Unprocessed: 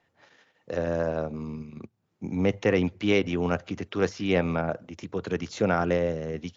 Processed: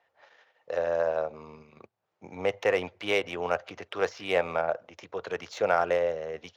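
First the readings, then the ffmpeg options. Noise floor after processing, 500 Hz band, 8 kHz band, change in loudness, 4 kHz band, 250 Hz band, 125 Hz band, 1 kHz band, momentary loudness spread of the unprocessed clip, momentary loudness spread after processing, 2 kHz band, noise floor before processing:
−78 dBFS, −0.5 dB, can't be measured, −2.0 dB, −0.5 dB, −14.0 dB, −16.0 dB, +2.0 dB, 12 LU, 11 LU, +0.5 dB, −74 dBFS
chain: -af "adynamicsmooth=sensitivity=5.5:basefreq=5500,lowshelf=frequency=380:width_type=q:width=1.5:gain=-14"

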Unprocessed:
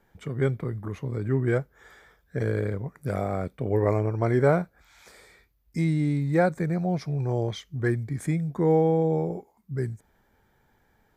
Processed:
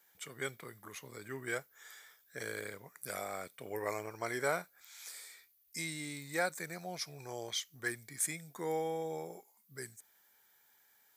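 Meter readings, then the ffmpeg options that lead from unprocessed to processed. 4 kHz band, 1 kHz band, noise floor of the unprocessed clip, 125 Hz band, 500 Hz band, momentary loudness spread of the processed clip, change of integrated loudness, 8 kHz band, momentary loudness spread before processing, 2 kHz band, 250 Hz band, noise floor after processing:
+3.0 dB, −9.5 dB, −67 dBFS, −25.0 dB, −14.0 dB, 15 LU, −13.5 dB, can't be measured, 12 LU, −3.0 dB, −19.5 dB, −69 dBFS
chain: -af "aderivative,volume=9dB"

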